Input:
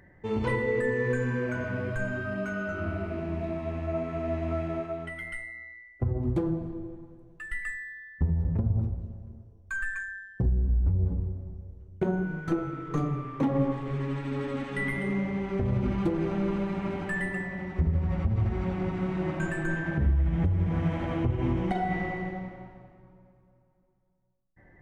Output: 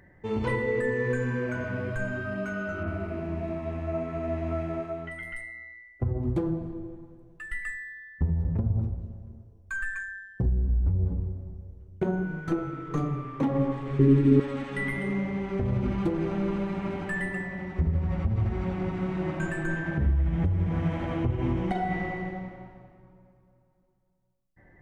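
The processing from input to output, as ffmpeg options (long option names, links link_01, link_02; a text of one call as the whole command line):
ffmpeg -i in.wav -filter_complex "[0:a]asettb=1/sr,asplit=3[link_01][link_02][link_03];[link_01]atrim=end=2.834[link_04];[link_02]atrim=start=2.83:end=5.41,asetpts=PTS-STARTPTS,afade=type=in:duration=0.004:curve=qsin,afade=type=out:start_time=2.576:duration=0.004:curve=qsin,acrossover=split=3700[link_05][link_06];[link_06]adelay=40[link_07];[link_05][link_07]amix=inputs=2:normalize=0,atrim=end_sample=113778[link_08];[link_03]atrim=start=5.406[link_09];[link_04][link_08]acrossfade=duration=0.004:curve1=hsin:curve2=qsin[link_10];[link_10][link_09]acrossfade=duration=0.004:curve1=qsin:curve2=hsin,asettb=1/sr,asplit=3[link_11][link_12][link_13];[link_11]atrim=end=13.994[link_14];[link_12]atrim=start=13.99:end=14.4,asetpts=PTS-STARTPTS,afade=type=in:duration=0.004:curve=qsin,afade=type=out:start_time=0.406:duration=0.004:curve=qsin,lowshelf=frequency=500:width_type=q:width=3:gain=10.5[link_15];[link_13]atrim=start=14.396[link_16];[link_14][link_15]acrossfade=duration=0.004:curve1=hsin:curve2=qsin[link_17];[link_17][link_16]acrossfade=duration=0.004:curve1=qsin:curve2=hsin" out.wav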